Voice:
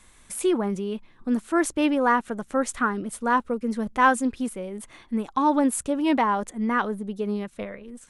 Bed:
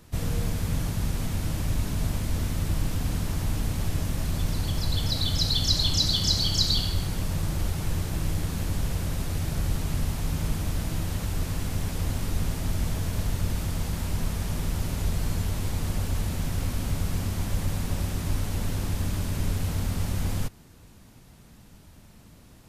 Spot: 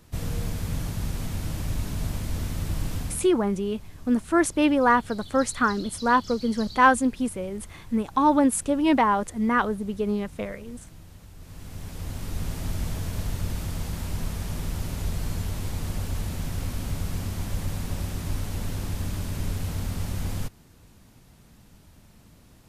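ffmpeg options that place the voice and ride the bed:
-filter_complex "[0:a]adelay=2800,volume=1.5dB[a];[1:a]volume=14dB,afade=t=out:st=2.98:d=0.31:silence=0.158489,afade=t=in:st=11.38:d=1.23:silence=0.158489[b];[a][b]amix=inputs=2:normalize=0"

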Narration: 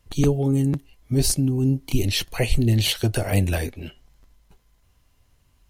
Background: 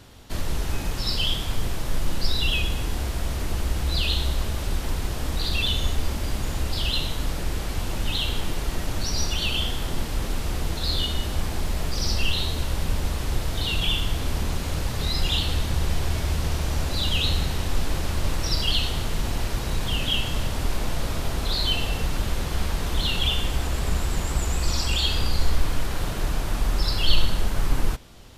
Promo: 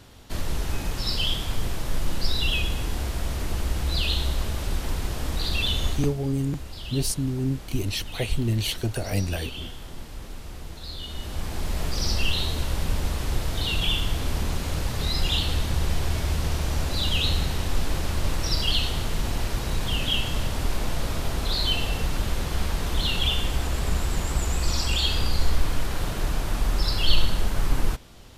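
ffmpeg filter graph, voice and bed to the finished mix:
-filter_complex "[0:a]adelay=5800,volume=-5.5dB[a];[1:a]volume=10dB,afade=t=out:st=5.88:d=0.26:silence=0.298538,afade=t=in:st=11:d=0.83:silence=0.281838[b];[a][b]amix=inputs=2:normalize=0"

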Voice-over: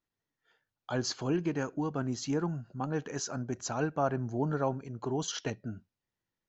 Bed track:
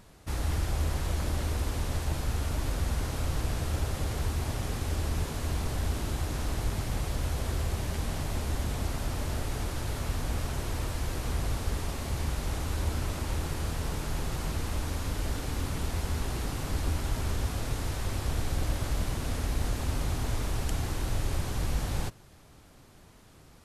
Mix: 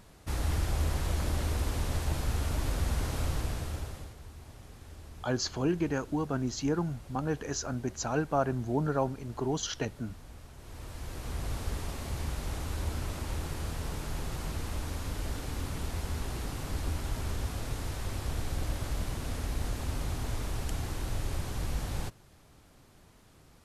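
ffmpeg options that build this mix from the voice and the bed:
-filter_complex "[0:a]adelay=4350,volume=1.5dB[a];[1:a]volume=13.5dB,afade=t=out:st=3.23:d=0.92:silence=0.141254,afade=t=in:st=10.57:d=1.03:silence=0.199526[b];[a][b]amix=inputs=2:normalize=0"

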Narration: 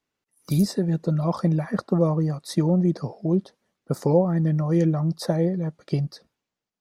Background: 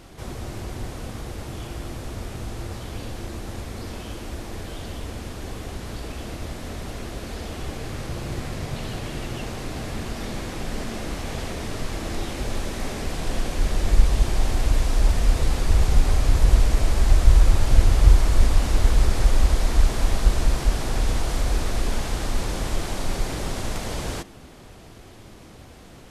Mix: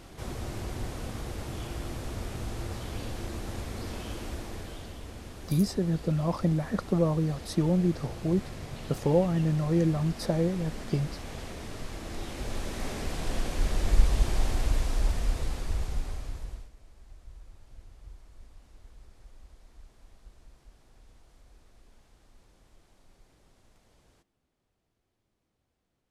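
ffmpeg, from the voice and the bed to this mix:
-filter_complex "[0:a]adelay=5000,volume=-4.5dB[a];[1:a]volume=1.5dB,afade=t=out:st=4.24:d=0.71:silence=0.473151,afade=t=in:st=12.06:d=0.83:silence=0.595662,afade=t=out:st=14.36:d=2.35:silence=0.0334965[b];[a][b]amix=inputs=2:normalize=0"

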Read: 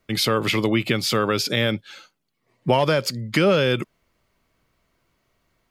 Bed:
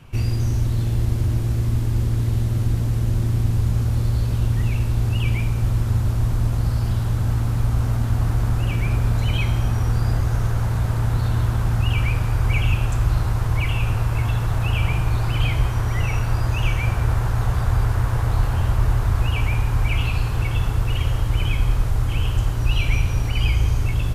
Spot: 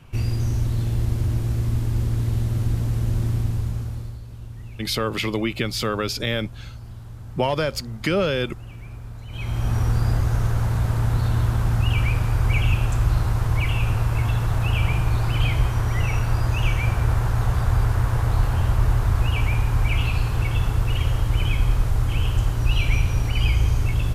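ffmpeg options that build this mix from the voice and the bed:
-filter_complex "[0:a]adelay=4700,volume=-3.5dB[a];[1:a]volume=14.5dB,afade=t=out:st=3.28:d=0.92:silence=0.177828,afade=t=in:st=9.29:d=0.47:silence=0.149624[b];[a][b]amix=inputs=2:normalize=0"

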